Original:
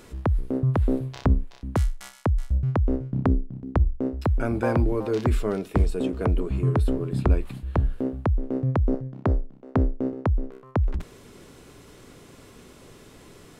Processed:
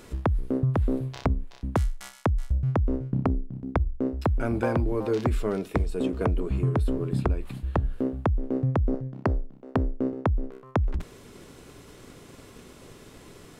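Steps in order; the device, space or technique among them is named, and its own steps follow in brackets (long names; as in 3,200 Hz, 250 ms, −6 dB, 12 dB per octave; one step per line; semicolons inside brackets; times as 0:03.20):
drum-bus smash (transient designer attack +5 dB, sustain 0 dB; downward compressor, threshold −19 dBFS, peak gain reduction 8.5 dB; soft clipping −13.5 dBFS, distortion −21 dB)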